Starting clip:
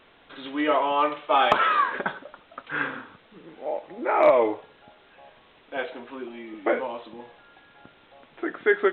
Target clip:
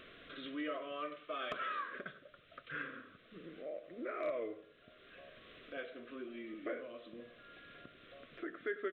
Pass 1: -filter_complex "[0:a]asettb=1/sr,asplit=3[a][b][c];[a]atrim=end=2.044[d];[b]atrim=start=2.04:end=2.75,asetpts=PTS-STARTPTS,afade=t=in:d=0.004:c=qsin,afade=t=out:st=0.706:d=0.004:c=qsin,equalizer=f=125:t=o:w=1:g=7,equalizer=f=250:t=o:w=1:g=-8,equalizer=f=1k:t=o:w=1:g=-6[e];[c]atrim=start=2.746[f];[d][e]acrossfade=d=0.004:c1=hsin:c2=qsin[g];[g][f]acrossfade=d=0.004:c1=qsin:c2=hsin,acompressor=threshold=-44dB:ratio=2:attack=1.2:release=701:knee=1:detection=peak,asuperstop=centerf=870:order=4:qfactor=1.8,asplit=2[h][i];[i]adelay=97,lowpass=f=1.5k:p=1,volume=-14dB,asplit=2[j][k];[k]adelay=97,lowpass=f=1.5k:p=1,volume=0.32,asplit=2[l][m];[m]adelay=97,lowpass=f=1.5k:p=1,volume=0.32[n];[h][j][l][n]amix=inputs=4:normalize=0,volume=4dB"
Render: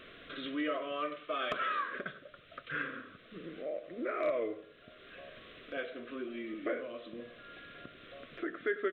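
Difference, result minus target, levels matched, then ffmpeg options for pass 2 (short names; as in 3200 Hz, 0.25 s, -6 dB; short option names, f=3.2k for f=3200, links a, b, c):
compressor: peak gain reduction -6 dB
-filter_complex "[0:a]asettb=1/sr,asplit=3[a][b][c];[a]atrim=end=2.044[d];[b]atrim=start=2.04:end=2.75,asetpts=PTS-STARTPTS,afade=t=in:d=0.004:c=qsin,afade=t=out:st=0.706:d=0.004:c=qsin,equalizer=f=125:t=o:w=1:g=7,equalizer=f=250:t=o:w=1:g=-8,equalizer=f=1k:t=o:w=1:g=-6[e];[c]atrim=start=2.746[f];[d][e]acrossfade=d=0.004:c1=hsin:c2=qsin[g];[g][f]acrossfade=d=0.004:c1=qsin:c2=hsin,acompressor=threshold=-55.5dB:ratio=2:attack=1.2:release=701:knee=1:detection=peak,asuperstop=centerf=870:order=4:qfactor=1.8,asplit=2[h][i];[i]adelay=97,lowpass=f=1.5k:p=1,volume=-14dB,asplit=2[j][k];[k]adelay=97,lowpass=f=1.5k:p=1,volume=0.32,asplit=2[l][m];[m]adelay=97,lowpass=f=1.5k:p=1,volume=0.32[n];[h][j][l][n]amix=inputs=4:normalize=0,volume=4dB"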